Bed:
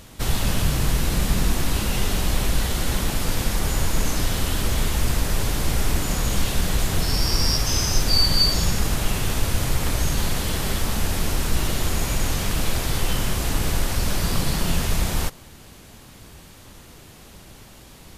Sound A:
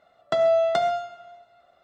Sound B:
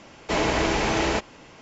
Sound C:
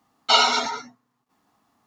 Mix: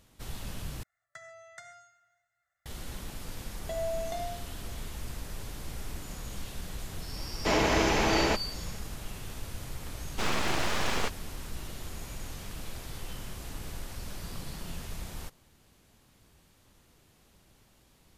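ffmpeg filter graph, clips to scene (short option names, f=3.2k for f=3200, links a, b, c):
-filter_complex "[1:a]asplit=2[a][b];[2:a]asplit=2[c][d];[0:a]volume=-17.5dB[e];[a]firequalizer=gain_entry='entry(120,0);entry(220,-23);entry(350,-22);entry(630,-16);entry(1000,-10);entry(1800,11);entry(2900,-10);entry(4500,-3);entry(6600,14)':delay=0.05:min_phase=1[f];[b]asuperstop=centerf=1300:order=4:qfactor=2.3[g];[d]aeval=exprs='abs(val(0))':c=same[h];[e]asplit=2[i][j];[i]atrim=end=0.834[k];[f]atrim=end=1.83,asetpts=PTS-STARTPTS,volume=-18dB[l];[j]atrim=start=2.656[m];[g]atrim=end=1.83,asetpts=PTS-STARTPTS,volume=-14dB,afade=t=in:d=0.004:c=hsin,afade=t=out:st=1.826:d=0.004:c=hsin,adelay=148617S[n];[c]atrim=end=1.61,asetpts=PTS-STARTPTS,volume=-2.5dB,afade=t=in:d=0.004:c=hsin,afade=t=out:st=1.606:d=0.004:c=hsin,adelay=7160[o];[h]atrim=end=1.61,asetpts=PTS-STARTPTS,volume=-4dB,afade=t=in:d=0.004:c=hsin,afade=t=out:st=1.606:d=0.004:c=hsin,adelay=9890[p];[k][l]acrossfade=d=0.004:c1=hsin:c2=hsin[q];[q][m]acrossfade=d=0.004:c1=hsin:c2=hsin[r];[r][n][o][p]amix=inputs=4:normalize=0"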